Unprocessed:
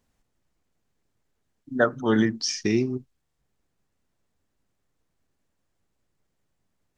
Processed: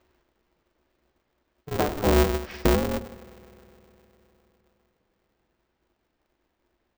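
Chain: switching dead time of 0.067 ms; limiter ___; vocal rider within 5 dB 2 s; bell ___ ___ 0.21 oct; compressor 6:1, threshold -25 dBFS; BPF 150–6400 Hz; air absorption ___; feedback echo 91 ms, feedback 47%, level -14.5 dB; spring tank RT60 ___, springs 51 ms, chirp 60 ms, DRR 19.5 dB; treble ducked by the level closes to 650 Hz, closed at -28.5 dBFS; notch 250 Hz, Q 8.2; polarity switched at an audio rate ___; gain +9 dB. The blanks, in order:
-11.5 dBFS, 210 Hz, +10.5 dB, 160 m, 3.9 s, 150 Hz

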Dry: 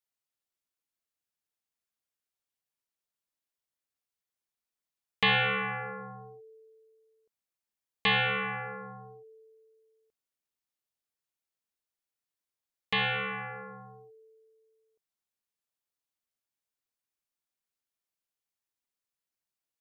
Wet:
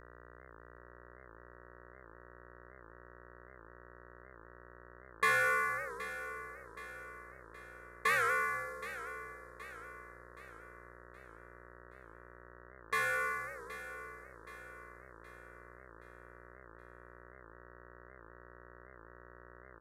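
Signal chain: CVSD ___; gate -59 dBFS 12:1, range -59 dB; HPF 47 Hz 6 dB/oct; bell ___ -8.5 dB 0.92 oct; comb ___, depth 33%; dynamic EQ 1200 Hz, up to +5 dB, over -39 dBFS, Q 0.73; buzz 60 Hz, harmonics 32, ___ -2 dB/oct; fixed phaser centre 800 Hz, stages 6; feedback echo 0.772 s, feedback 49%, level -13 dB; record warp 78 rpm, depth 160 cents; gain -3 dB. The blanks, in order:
64 kbps, 110 Hz, 5.4 ms, -50 dBFS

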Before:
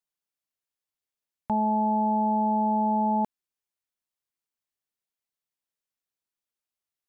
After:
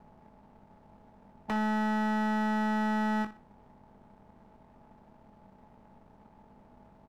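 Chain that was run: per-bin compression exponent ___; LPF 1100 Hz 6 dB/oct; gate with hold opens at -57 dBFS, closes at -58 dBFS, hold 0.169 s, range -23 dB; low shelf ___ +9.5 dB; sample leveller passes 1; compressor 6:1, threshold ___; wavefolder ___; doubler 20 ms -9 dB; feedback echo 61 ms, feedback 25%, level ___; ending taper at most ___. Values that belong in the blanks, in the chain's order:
0.4, 95 Hz, -25 dBFS, -25.5 dBFS, -14 dB, 220 dB/s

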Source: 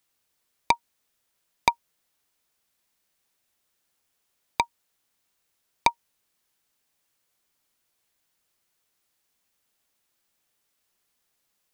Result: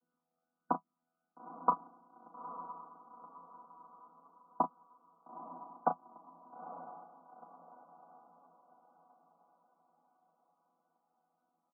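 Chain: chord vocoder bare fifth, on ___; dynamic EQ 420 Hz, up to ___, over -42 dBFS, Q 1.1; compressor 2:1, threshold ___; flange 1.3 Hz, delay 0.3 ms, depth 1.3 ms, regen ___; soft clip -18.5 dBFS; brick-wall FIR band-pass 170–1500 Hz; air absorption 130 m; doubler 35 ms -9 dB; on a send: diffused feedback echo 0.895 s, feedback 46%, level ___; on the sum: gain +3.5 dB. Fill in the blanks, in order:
E3, +3 dB, -25 dBFS, +25%, -11 dB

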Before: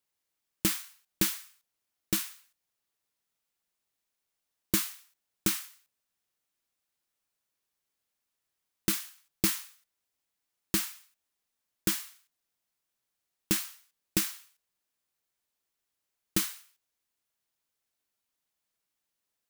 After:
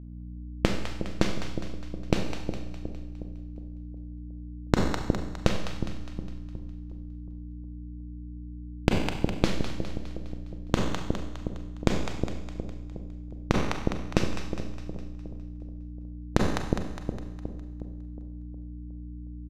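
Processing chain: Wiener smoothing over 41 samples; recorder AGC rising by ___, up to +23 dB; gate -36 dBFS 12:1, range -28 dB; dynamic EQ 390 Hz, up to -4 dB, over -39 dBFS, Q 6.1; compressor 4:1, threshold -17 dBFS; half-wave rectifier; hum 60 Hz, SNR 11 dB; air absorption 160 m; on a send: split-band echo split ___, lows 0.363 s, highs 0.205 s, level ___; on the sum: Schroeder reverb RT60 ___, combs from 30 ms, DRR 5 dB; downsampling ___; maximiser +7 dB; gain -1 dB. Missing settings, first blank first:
12 dB/s, 670 Hz, -8.5 dB, 0.93 s, 32000 Hz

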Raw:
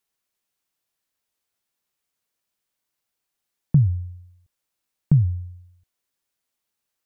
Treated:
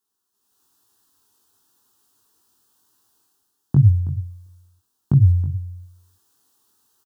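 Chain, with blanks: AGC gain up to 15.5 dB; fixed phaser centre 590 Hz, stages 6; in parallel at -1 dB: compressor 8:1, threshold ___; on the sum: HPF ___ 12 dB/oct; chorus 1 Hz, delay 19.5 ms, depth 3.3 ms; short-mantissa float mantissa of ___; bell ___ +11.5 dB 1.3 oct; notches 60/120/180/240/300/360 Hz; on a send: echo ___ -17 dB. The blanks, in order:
-27 dBFS, 73 Hz, 6-bit, 140 Hz, 0.323 s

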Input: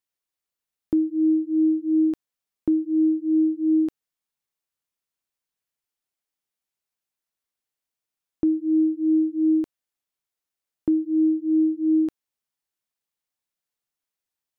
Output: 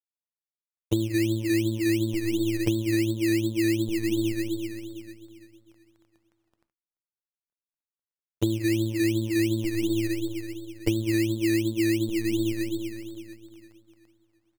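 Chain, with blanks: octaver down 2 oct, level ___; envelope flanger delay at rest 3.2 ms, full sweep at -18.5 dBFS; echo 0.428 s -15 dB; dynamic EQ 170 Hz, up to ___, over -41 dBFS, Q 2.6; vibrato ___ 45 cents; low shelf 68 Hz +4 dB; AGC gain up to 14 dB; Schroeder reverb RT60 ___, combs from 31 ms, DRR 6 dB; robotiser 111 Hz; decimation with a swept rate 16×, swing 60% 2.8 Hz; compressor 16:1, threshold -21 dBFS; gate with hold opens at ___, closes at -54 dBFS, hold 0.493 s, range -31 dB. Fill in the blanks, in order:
0 dB, -5 dB, 2.8 Hz, 2.6 s, -51 dBFS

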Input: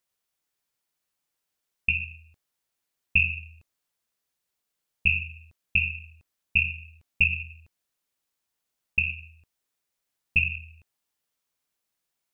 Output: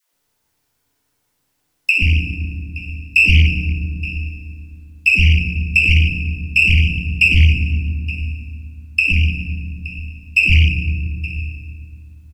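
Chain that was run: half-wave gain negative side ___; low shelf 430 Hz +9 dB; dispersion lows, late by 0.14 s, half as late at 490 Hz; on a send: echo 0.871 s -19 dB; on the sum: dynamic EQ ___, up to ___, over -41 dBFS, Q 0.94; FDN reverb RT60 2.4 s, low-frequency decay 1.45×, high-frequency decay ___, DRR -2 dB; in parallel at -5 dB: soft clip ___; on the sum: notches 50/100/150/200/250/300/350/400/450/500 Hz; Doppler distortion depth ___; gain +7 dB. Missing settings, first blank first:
-3 dB, 850 Hz, -4 dB, 0.5×, -22.5 dBFS, 0.33 ms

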